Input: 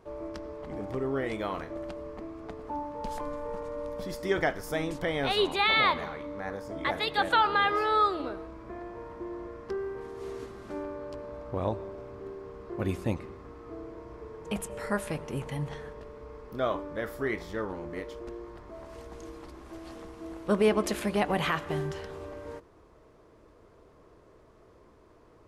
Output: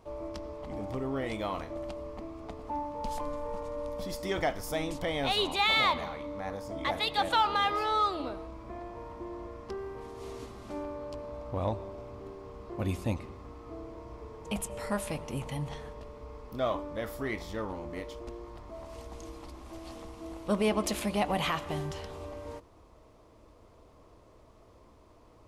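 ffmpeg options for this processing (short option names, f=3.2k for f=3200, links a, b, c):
-filter_complex "[0:a]equalizer=f=160:t=o:w=0.67:g=-5,equalizer=f=400:t=o:w=0.67:g=-8,equalizer=f=1.6k:t=o:w=0.67:g=-9,asplit=2[a][b];[b]asoftclip=type=tanh:threshold=-33dB,volume=-7dB[c];[a][c]amix=inputs=2:normalize=0"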